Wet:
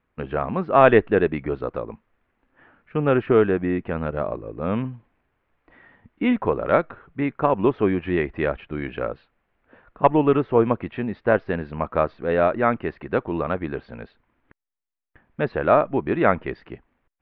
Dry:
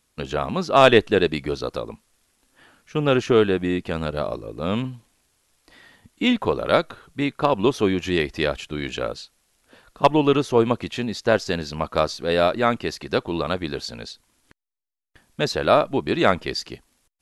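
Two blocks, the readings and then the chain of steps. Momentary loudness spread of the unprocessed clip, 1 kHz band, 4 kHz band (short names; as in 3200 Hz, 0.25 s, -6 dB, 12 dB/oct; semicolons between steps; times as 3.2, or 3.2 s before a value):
12 LU, 0.0 dB, -16.5 dB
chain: inverse Chebyshev low-pass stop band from 6900 Hz, stop band 60 dB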